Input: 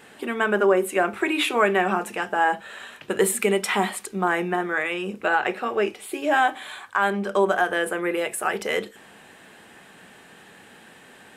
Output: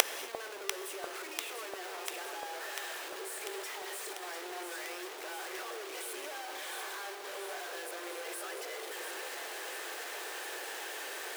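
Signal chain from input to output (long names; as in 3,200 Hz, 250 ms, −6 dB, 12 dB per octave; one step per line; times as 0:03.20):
sign of each sample alone
Butterworth high-pass 350 Hz 48 dB per octave
gate with flip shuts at −20 dBFS, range −33 dB
on a send: delay that swaps between a low-pass and a high-pass 347 ms, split 920 Hz, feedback 85%, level −6 dB
on the sum: reverb whose tail is shaped and stops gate 280 ms flat, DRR 11 dB
level +15 dB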